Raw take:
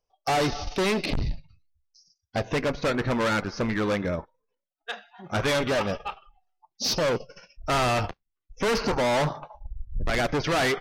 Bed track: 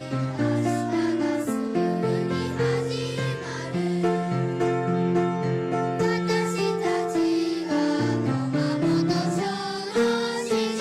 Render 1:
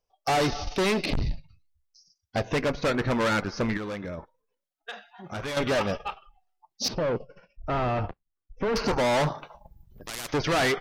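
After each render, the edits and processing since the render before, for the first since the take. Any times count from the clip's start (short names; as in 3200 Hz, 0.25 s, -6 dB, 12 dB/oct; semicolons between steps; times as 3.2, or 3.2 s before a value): 3.77–5.57 compressor, threshold -32 dBFS; 6.88–8.76 tape spacing loss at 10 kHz 39 dB; 9.38–10.34 spectral compressor 4:1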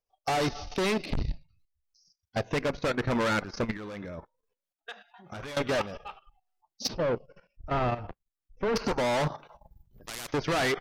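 level quantiser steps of 13 dB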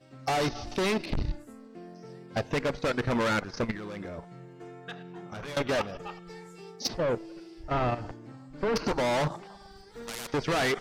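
add bed track -22 dB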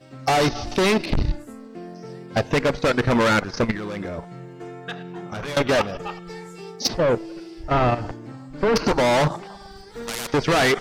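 gain +8.5 dB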